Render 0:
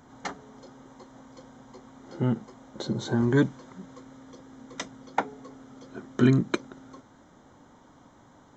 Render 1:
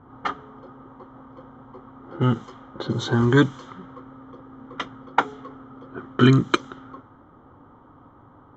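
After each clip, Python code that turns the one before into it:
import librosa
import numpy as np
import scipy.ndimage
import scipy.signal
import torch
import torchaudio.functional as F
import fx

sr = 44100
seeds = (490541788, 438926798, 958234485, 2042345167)

y = fx.env_lowpass(x, sr, base_hz=880.0, full_db=-24.5)
y = fx.graphic_eq_31(y, sr, hz=(100, 200, 630, 1250, 3150), db=(6, -8, -6, 11, 10))
y = y * 10.0 ** (5.5 / 20.0)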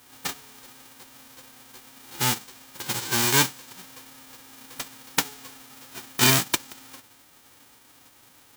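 y = fx.envelope_flatten(x, sr, power=0.1)
y = y * 10.0 ** (-4.0 / 20.0)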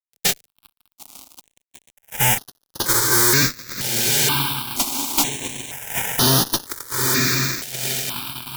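y = fx.echo_diffused(x, sr, ms=932, feedback_pct=53, wet_db=-10.5)
y = fx.fuzz(y, sr, gain_db=35.0, gate_db=-38.0)
y = fx.phaser_held(y, sr, hz=2.1, low_hz=290.0, high_hz=7700.0)
y = y * 10.0 ** (2.0 / 20.0)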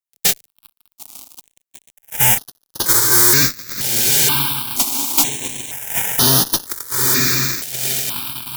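y = fx.high_shelf(x, sr, hz=6000.0, db=6.5)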